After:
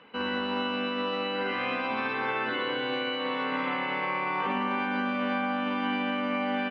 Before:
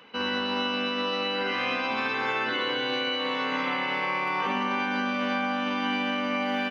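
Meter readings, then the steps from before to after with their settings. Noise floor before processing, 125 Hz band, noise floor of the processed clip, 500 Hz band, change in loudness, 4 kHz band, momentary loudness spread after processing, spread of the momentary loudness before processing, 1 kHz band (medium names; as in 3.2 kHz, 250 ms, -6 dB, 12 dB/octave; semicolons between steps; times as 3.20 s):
-29 dBFS, 0.0 dB, -31 dBFS, -0.5 dB, -2.0 dB, -5.5 dB, 1 LU, 1 LU, -1.5 dB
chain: distance through air 270 m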